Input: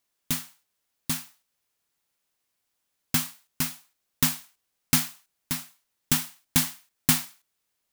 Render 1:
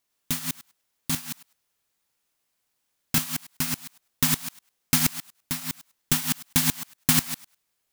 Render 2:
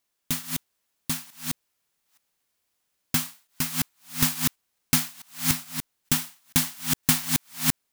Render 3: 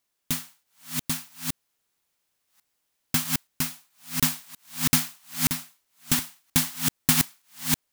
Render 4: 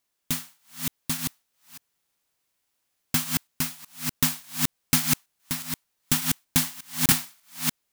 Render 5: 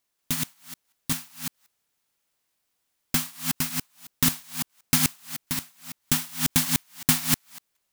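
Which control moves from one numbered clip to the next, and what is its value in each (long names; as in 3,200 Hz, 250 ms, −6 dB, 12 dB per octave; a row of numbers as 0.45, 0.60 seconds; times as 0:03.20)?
delay that plays each chunk backwards, delay time: 102, 435, 650, 296, 185 milliseconds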